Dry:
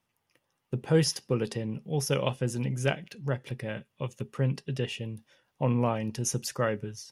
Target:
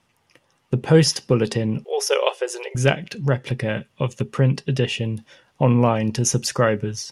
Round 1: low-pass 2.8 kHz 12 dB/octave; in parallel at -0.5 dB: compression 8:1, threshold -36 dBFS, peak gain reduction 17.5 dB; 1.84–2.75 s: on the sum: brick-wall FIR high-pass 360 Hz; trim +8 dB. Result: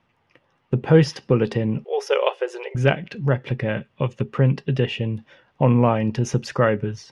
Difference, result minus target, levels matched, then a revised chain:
8 kHz band -14.0 dB
low-pass 9.2 kHz 12 dB/octave; in parallel at -0.5 dB: compression 8:1, threshold -36 dBFS, peak gain reduction 17.5 dB; 1.84–2.75 s: on the sum: brick-wall FIR high-pass 360 Hz; trim +8 dB

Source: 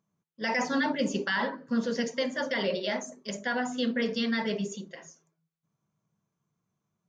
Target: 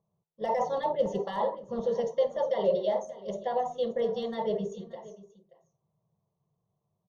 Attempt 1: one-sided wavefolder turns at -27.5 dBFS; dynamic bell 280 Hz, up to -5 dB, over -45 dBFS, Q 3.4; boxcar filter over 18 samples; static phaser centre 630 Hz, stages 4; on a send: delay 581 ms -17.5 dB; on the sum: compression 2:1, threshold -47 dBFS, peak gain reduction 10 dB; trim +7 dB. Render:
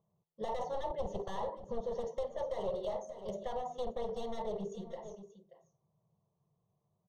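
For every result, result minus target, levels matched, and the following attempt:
one-sided wavefolder: distortion +25 dB; compression: peak gain reduction +10 dB
one-sided wavefolder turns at -19.5 dBFS; dynamic bell 280 Hz, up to -5 dB, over -45 dBFS, Q 3.4; boxcar filter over 18 samples; static phaser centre 630 Hz, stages 4; on a send: delay 581 ms -17.5 dB; on the sum: compression 2:1, threshold -47 dBFS, peak gain reduction 11 dB; trim +7 dB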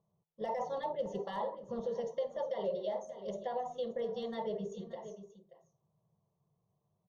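compression: peak gain reduction +11 dB
one-sided wavefolder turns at -19.5 dBFS; dynamic bell 280 Hz, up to -5 dB, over -45 dBFS, Q 3.4; boxcar filter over 18 samples; static phaser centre 630 Hz, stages 4; on a send: delay 581 ms -17.5 dB; on the sum: trim +7 dB

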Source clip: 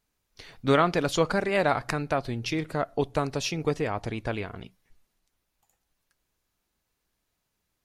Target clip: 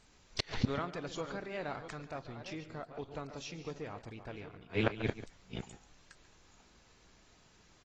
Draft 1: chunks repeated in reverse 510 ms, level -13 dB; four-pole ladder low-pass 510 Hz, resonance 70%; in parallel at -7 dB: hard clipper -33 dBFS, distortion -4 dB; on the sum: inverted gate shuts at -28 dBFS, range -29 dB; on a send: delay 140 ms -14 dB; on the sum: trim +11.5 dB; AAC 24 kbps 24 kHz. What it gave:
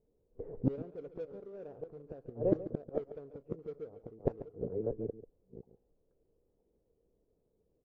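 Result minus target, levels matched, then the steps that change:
500 Hz band +3.0 dB
remove: four-pole ladder low-pass 510 Hz, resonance 70%

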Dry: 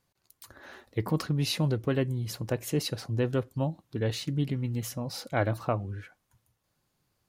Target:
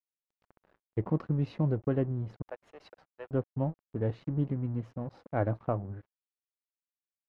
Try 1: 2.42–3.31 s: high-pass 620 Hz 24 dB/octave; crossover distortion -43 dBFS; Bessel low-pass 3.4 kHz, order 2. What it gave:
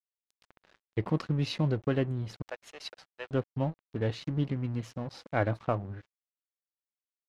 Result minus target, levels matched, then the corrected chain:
4 kHz band +17.0 dB
2.42–3.31 s: high-pass 620 Hz 24 dB/octave; crossover distortion -43 dBFS; Bessel low-pass 900 Hz, order 2

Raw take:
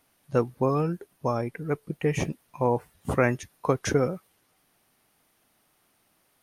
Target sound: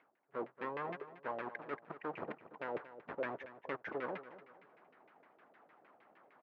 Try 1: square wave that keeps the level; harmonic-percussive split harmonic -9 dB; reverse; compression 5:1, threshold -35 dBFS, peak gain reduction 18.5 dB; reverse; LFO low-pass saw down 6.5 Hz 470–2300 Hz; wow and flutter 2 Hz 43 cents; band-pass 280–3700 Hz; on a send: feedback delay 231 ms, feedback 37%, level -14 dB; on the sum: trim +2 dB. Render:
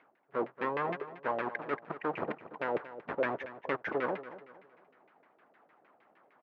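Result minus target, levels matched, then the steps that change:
compression: peak gain reduction -8 dB
change: compression 5:1, threshold -45 dBFS, peak gain reduction 26.5 dB

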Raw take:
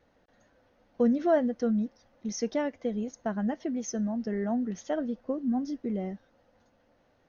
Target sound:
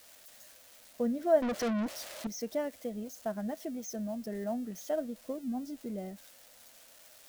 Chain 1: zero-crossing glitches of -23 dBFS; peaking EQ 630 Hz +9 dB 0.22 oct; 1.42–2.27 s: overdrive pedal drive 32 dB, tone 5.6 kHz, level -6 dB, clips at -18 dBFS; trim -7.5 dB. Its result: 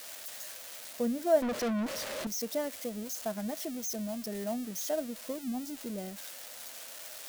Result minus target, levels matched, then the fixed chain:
zero-crossing glitches: distortion +11 dB
zero-crossing glitches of -34.5 dBFS; peaking EQ 630 Hz +9 dB 0.22 oct; 1.42–2.27 s: overdrive pedal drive 32 dB, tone 5.6 kHz, level -6 dB, clips at -18 dBFS; trim -7.5 dB

